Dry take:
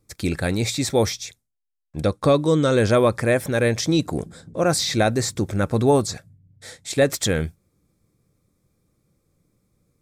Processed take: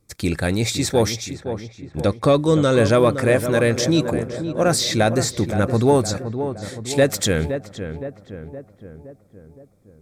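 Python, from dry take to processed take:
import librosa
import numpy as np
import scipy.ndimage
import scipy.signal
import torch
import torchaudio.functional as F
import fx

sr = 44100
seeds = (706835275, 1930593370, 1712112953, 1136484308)

p1 = fx.clip_asym(x, sr, top_db=-19.5, bottom_db=-13.5)
p2 = x + F.gain(torch.from_numpy(p1), -12.0).numpy()
y = fx.echo_filtered(p2, sr, ms=517, feedback_pct=57, hz=1600.0, wet_db=-9)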